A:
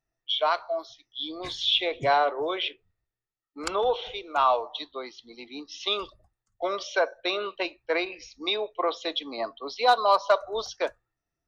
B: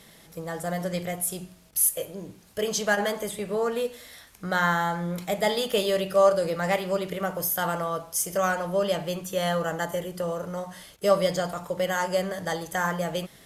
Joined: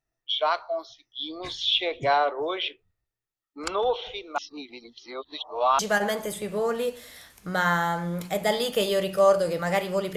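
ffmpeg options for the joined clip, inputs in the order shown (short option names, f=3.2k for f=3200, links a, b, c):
-filter_complex "[0:a]apad=whole_dur=10.16,atrim=end=10.16,asplit=2[a][b];[a]atrim=end=4.382[c];[b]atrim=start=4.378:end=5.792,asetpts=PTS-STARTPTS,areverse[d];[1:a]atrim=start=2.758:end=7.13[e];[c][d]acrossfade=d=0.004:c1=hsin:c2=hsin[f];[f][e]acrossfade=d=0.004:c1=hsin:c2=hsin"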